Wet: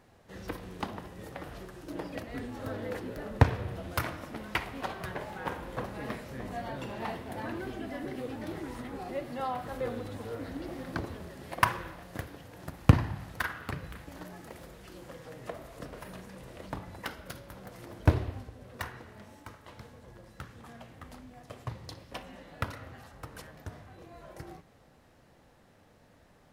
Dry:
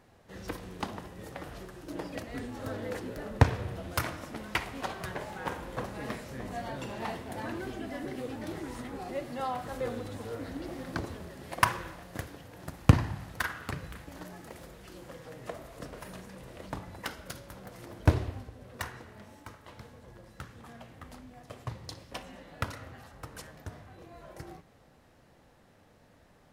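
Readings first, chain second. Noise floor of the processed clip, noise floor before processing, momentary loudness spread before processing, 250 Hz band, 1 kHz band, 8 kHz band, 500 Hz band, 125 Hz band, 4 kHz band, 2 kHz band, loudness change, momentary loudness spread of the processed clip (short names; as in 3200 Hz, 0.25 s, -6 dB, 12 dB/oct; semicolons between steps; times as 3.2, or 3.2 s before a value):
-61 dBFS, -61 dBFS, 20 LU, 0.0 dB, 0.0 dB, -4.0 dB, 0.0 dB, 0.0 dB, -2.0 dB, -0.5 dB, 0.0 dB, 20 LU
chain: dynamic EQ 7200 Hz, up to -6 dB, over -59 dBFS, Q 0.93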